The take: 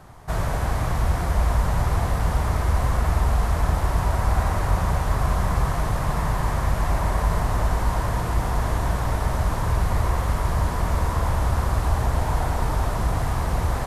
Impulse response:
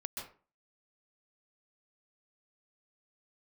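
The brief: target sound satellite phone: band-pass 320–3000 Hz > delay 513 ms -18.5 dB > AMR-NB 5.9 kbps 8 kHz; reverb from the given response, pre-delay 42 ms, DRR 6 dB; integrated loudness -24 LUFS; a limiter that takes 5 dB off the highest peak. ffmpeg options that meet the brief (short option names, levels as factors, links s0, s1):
-filter_complex "[0:a]alimiter=limit=0.211:level=0:latency=1,asplit=2[s0][s1];[1:a]atrim=start_sample=2205,adelay=42[s2];[s1][s2]afir=irnorm=-1:irlink=0,volume=0.531[s3];[s0][s3]amix=inputs=2:normalize=0,highpass=320,lowpass=3000,aecho=1:1:513:0.119,volume=2.82" -ar 8000 -c:a libopencore_amrnb -b:a 5900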